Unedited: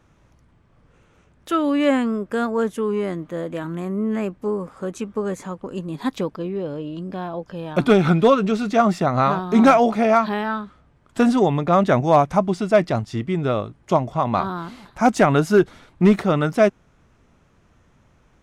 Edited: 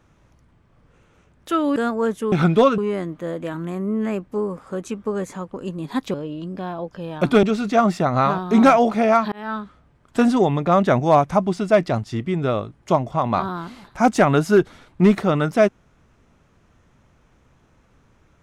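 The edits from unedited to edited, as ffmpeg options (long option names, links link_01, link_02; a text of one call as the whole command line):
ffmpeg -i in.wav -filter_complex "[0:a]asplit=7[link_01][link_02][link_03][link_04][link_05][link_06][link_07];[link_01]atrim=end=1.762[link_08];[link_02]atrim=start=2.318:end=2.882[link_09];[link_03]atrim=start=7.978:end=8.442[link_10];[link_04]atrim=start=2.878:end=6.242[link_11];[link_05]atrim=start=6.688:end=7.982[link_12];[link_06]atrim=start=8.438:end=10.33,asetpts=PTS-STARTPTS,afade=type=out:start_time=1.888:duration=0.004:curve=hsin[link_13];[link_07]atrim=start=10.33,asetpts=PTS-STARTPTS,afade=type=in:duration=0.25[link_14];[link_08][link_09]acrossfade=duration=0.004:curve1=hsin:curve2=hsin[link_15];[link_15][link_10]acrossfade=duration=0.004:curve1=hsin:curve2=hsin[link_16];[link_16][link_11]acrossfade=duration=0.004:curve1=hsin:curve2=hsin[link_17];[link_17][link_12]acrossfade=duration=0.004:curve1=hsin:curve2=hsin[link_18];[link_13][link_14]concat=n=2:v=0:a=1[link_19];[link_18][link_19]acrossfade=duration=0.004:curve1=hsin:curve2=hsin" out.wav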